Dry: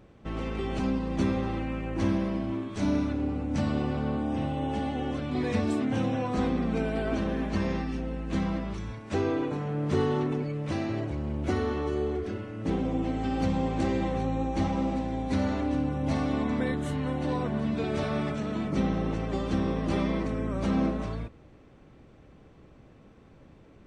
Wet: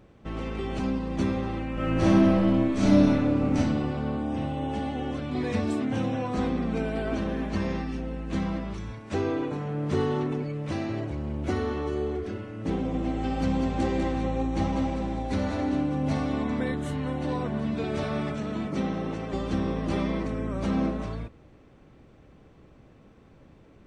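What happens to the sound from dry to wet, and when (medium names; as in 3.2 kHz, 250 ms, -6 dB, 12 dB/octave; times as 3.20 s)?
1.73–3.57 s: reverb throw, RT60 0.95 s, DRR -7.5 dB
12.74–16.19 s: delay 197 ms -5.5 dB
18.67–19.33 s: high-pass 150 Hz 6 dB/octave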